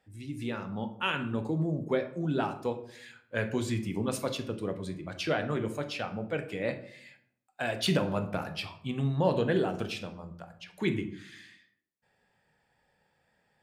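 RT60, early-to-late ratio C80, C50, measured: 0.65 s, 15.0 dB, 12.0 dB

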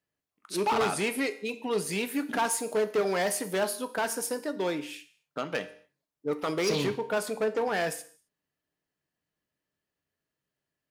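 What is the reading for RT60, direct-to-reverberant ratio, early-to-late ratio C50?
not exponential, 10.0 dB, 15.0 dB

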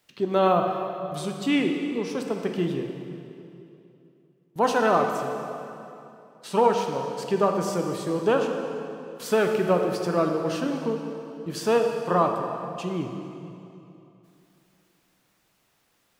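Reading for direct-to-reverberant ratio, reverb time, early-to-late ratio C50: 3.0 dB, 2.9 s, 4.5 dB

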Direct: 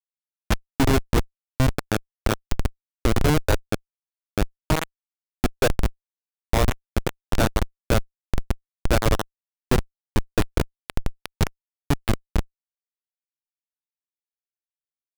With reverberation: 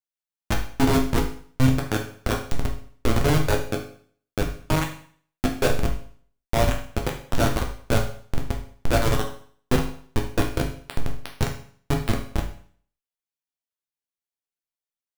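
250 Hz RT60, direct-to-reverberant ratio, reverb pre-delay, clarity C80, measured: 0.50 s, 0.5 dB, 7 ms, 12.0 dB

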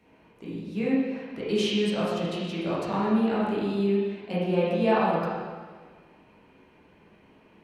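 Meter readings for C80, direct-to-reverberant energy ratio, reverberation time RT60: 0.5 dB, -9.0 dB, 1.6 s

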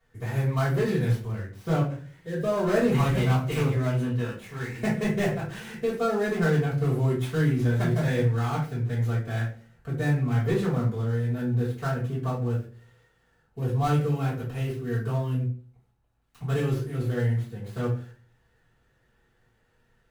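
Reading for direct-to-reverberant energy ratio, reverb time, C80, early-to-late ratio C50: -8.5 dB, 0.40 s, 11.5 dB, 6.5 dB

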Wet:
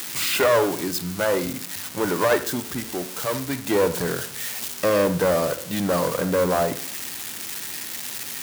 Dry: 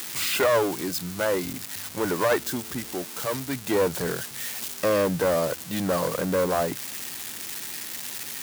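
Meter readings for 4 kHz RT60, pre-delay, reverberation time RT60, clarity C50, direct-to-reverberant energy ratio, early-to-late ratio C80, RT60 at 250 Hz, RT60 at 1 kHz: 0.45 s, 31 ms, 0.50 s, 13.0 dB, 10.5 dB, 16.0 dB, 0.50 s, 0.50 s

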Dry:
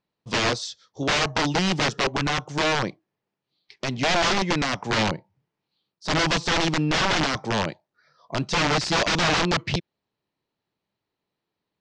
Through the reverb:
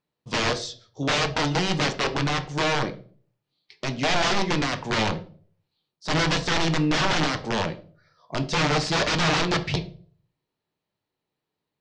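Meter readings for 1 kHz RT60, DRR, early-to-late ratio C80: 0.40 s, 6.5 dB, 19.0 dB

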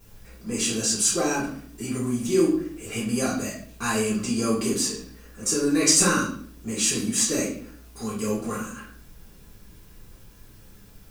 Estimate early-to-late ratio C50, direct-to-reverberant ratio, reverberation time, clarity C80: 5.0 dB, -9.5 dB, 0.55 s, 9.5 dB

